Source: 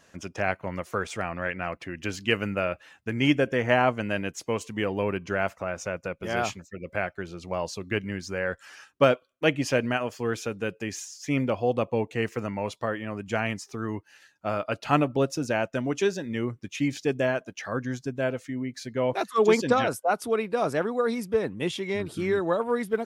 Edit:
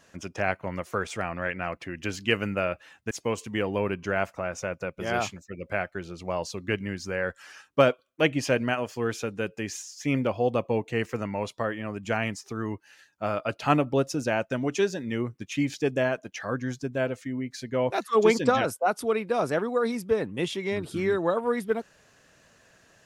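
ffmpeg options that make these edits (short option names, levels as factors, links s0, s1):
-filter_complex "[0:a]asplit=2[s0][s1];[s0]atrim=end=3.112[s2];[s1]atrim=start=4.338[s3];[s2][s3]acrossfade=d=0.004:c1=hsin:c2=hsin"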